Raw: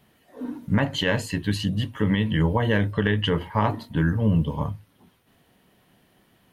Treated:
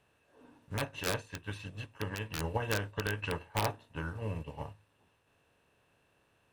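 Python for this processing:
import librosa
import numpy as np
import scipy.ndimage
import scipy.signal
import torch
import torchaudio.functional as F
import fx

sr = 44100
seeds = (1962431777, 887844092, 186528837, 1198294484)

y = fx.bin_compress(x, sr, power=0.6)
y = fx.peak_eq(y, sr, hz=200.0, db=-12.5, octaves=0.86)
y = (np.mod(10.0 ** (11.0 / 20.0) * y + 1.0, 2.0) - 1.0) / 10.0 ** (11.0 / 20.0)
y = fx.formant_shift(y, sr, semitones=-2)
y = fx.upward_expand(y, sr, threshold_db=-31.0, expansion=2.5)
y = F.gain(torch.from_numpy(y), -8.5).numpy()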